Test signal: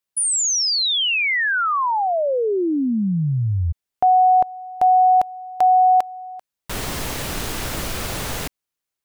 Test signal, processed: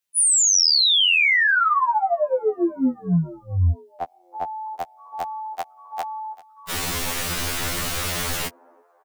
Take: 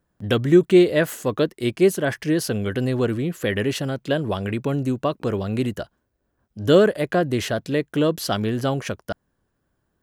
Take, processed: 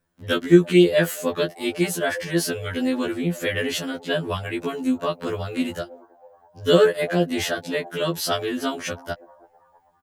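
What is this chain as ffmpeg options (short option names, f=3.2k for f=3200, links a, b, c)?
-filter_complex "[0:a]acrossover=split=150|1100[a][b][c];[b]asplit=5[d][e][f][g][h];[e]adelay=324,afreqshift=130,volume=-18dB[i];[f]adelay=648,afreqshift=260,volume=-24.7dB[j];[g]adelay=972,afreqshift=390,volume=-31.5dB[k];[h]adelay=1296,afreqshift=520,volume=-38.2dB[l];[d][i][j][k][l]amix=inputs=5:normalize=0[m];[c]acontrast=30[n];[a][m][n]amix=inputs=3:normalize=0,afftfilt=real='re*2*eq(mod(b,4),0)':imag='im*2*eq(mod(b,4),0)':win_size=2048:overlap=0.75"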